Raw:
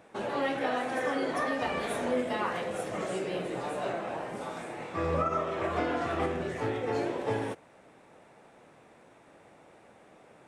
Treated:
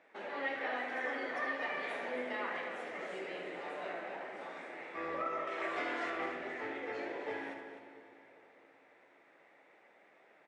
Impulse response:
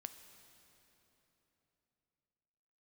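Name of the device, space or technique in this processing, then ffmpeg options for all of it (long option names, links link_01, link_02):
station announcement: -filter_complex "[0:a]bandreject=frequency=1100:width=29,asettb=1/sr,asplit=3[link_01][link_02][link_03];[link_01]atrim=end=5.474[link_04];[link_02]atrim=start=5.47:end=6.1,asetpts=PTS-STARTPTS,afade=type=in:duration=0.004:curve=qsin,afade=type=out:start_time=0.626:duration=0.004:curve=qsin,aemphasis=mode=production:type=75kf[link_05];[link_03]atrim=start=6.096[link_06];[link_04][link_05]acrossfade=duration=0.004:curve1=hsin:curve2=qsin[link_07];[link_07][link_06]acrossfade=duration=0.004:curve1=qsin:curve2=hsin,highpass=330,lowpass=4800,equalizer=frequency=2000:width_type=o:width=0.57:gain=10,aecho=1:1:75.8|256.6:0.355|0.282[link_08];[1:a]atrim=start_sample=2205[link_09];[link_08][link_09]afir=irnorm=-1:irlink=0,volume=-4.5dB"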